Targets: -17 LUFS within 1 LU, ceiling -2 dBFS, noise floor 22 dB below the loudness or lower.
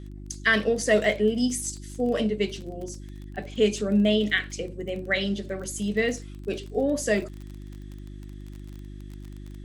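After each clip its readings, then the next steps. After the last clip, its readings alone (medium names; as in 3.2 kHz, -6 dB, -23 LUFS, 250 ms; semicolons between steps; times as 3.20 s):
tick rate 26 per s; hum 50 Hz; highest harmonic 350 Hz; hum level -38 dBFS; loudness -26.0 LUFS; peak level -8.5 dBFS; loudness target -17.0 LUFS
-> de-click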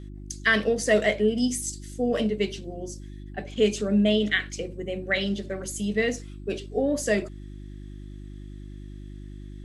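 tick rate 0 per s; hum 50 Hz; highest harmonic 350 Hz; hum level -38 dBFS
-> de-hum 50 Hz, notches 7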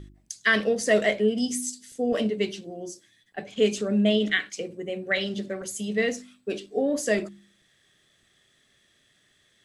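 hum not found; loudness -26.0 LUFS; peak level -8.5 dBFS; loudness target -17.0 LUFS
-> trim +9 dB; peak limiter -2 dBFS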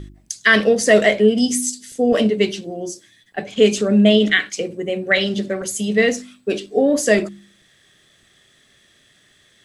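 loudness -17.5 LUFS; peak level -2.0 dBFS; noise floor -56 dBFS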